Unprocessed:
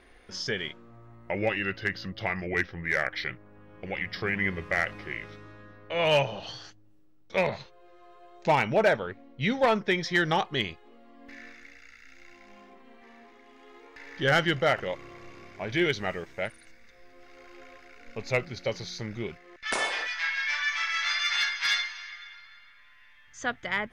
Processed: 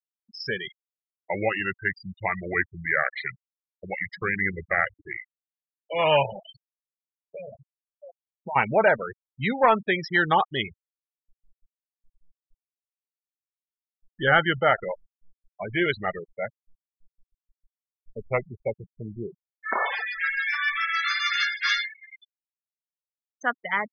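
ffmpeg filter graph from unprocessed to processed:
-filter_complex "[0:a]asettb=1/sr,asplit=3[s0][s1][s2];[s0]atrim=end=6.414[s3];[s1]atrim=start=6.41:end=8.56,asetpts=PTS-STARTPTS,afade=t=in:d=0.004:c=qsin,afade=t=out:st=2.146:d=0.004:c=qsin,lowpass=5900,aecho=1:1:657:0.112,atrim=end_sample=94815,acompressor=threshold=0.0224:ratio=12:attack=3.2:release=140:knee=1:detection=peak[s4];[s2]atrim=start=8.556[s5];[s3][s4]acrossfade=d=0.004:c1=hsin:c2=qsin[s6];[s6][s5]acrossfade=d=0.004:c1=qsin:c2=hsin,asettb=1/sr,asplit=3[s7][s8][s9];[s7]atrim=end=16.374[s10];[s8]atrim=start=16.37:end=19.86,asetpts=PTS-STARTPTS,afade=t=in:d=0.004:c=qsin,afade=t=out:st=3.486:d=0.004:c=qsin,agate=range=0.0224:threshold=0.00355:ratio=3:release=100:detection=peak,lowpass=f=2100:w=0.5412,lowpass=f=2100:w=1.3066[s11];[s9]atrim=start=19.856[s12];[s10][s11]acrossfade=d=0.004:c1=hsin:c2=qsin[s13];[s13][s12]acrossfade=d=0.004:c1=qsin:c2=hsin,afftfilt=real='re*gte(hypot(re,im),0.0501)':imag='im*gte(hypot(re,im),0.0501)':win_size=1024:overlap=0.75,equalizer=f=1100:w=1.3:g=9.5"

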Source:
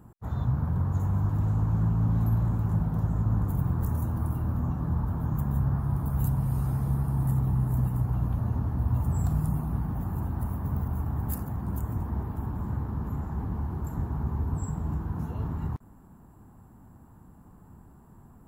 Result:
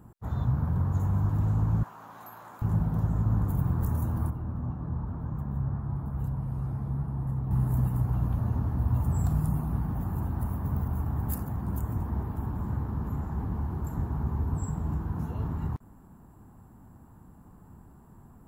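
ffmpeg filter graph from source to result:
-filter_complex "[0:a]asettb=1/sr,asplit=3[s0][s1][s2];[s0]atrim=end=1.834[s3];[s1]atrim=start=1.83:end=2.62,asetpts=PTS-STARTPTS,afade=t=in:d=0.004:c=qsin,afade=t=out:st=0.786:d=0.004:c=qsin,highpass=850,asplit=2[s4][s5];[s5]adelay=15,volume=0.237[s6];[s4][s6]amix=inputs=2:normalize=0,atrim=end_sample=34839[s7];[s2]atrim=start=2.616[s8];[s3][s7]acrossfade=d=0.004:c1=hsin:c2=qsin[s9];[s9][s8]acrossfade=d=0.004:c1=qsin:c2=hsin,asettb=1/sr,asplit=3[s10][s11][s12];[s10]atrim=end=4.304[s13];[s11]atrim=start=4.3:end=7.51,asetpts=PTS-STARTPTS,afade=t=in:d=0.004:c=qsin,afade=t=out:st=3.206:d=0.004:c=qsin,lowpass=f=1800:p=1,flanger=delay=1.8:depth=7.8:regen=76:speed=1:shape=sinusoidal[s14];[s12]atrim=start=7.506[s15];[s13][s14]acrossfade=d=0.004:c1=hsin:c2=qsin[s16];[s16][s15]acrossfade=d=0.004:c1=qsin:c2=hsin"

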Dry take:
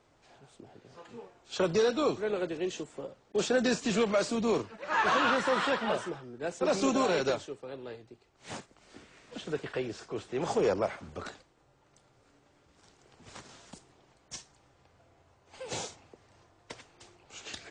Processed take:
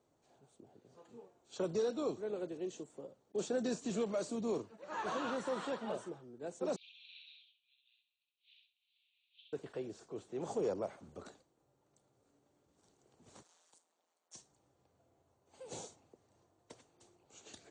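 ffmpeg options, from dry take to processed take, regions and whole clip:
-filter_complex "[0:a]asettb=1/sr,asplit=3[s0][s1][s2];[s0]atrim=end=6.764[s3];[s1]atrim=start=6.76:end=9.53,asetpts=PTS-STARTPTS,afade=t=in:d=0.004:c=qsin,afade=t=out:st=2.766:d=0.004:c=qsin,asuperpass=centerf=3100:order=8:qfactor=2,aecho=1:1:65|130|195|260:0.708|0.184|0.0479|0.0124,atrim=end_sample=122157[s4];[s2]atrim=start=9.526[s5];[s3][s4]acrossfade=d=0.004:c1=hsin:c2=qsin[s6];[s6][s5]acrossfade=d=0.004:c1=qsin:c2=hsin,asettb=1/sr,asplit=3[s7][s8][s9];[s7]atrim=end=13.434[s10];[s8]atrim=start=13.43:end=14.35,asetpts=PTS-STARTPTS,afade=t=in:d=0.004:c=qsin,afade=t=out:st=0.916:d=0.004:c=qsin,highpass=780,aeval=exprs='val(0)*sin(2*PI*85*n/s)':c=same[s11];[s9]atrim=start=14.346[s12];[s10][s11]acrossfade=d=0.004:c1=hsin:c2=qsin[s13];[s13][s12]acrossfade=d=0.004:c1=qsin:c2=hsin,highpass=f=200:p=1,equalizer=f=2100:w=0.5:g=-13.5,bandreject=f=5100:w=9.1,volume=0.596"

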